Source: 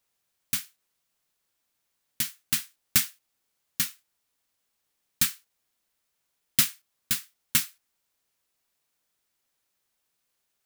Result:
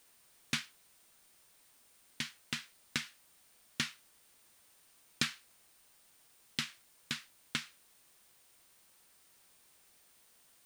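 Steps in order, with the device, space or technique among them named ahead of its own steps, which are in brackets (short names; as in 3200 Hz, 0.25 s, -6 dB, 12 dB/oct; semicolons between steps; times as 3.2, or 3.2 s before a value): medium wave at night (BPF 150–3800 Hz; compressor, threshold -33 dBFS, peak gain reduction 9 dB; tremolo 0.21 Hz, depth 45%; whine 9000 Hz -76 dBFS; white noise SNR 20 dB); gain +5 dB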